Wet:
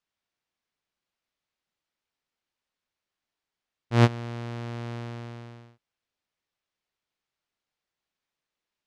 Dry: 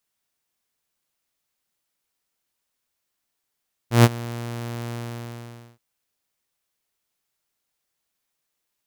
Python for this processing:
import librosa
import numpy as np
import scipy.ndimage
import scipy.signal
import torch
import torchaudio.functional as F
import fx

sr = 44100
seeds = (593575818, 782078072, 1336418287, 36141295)

y = scipy.signal.sosfilt(scipy.signal.butter(2, 4400.0, 'lowpass', fs=sr, output='sos'), x)
y = F.gain(torch.from_numpy(y), -3.5).numpy()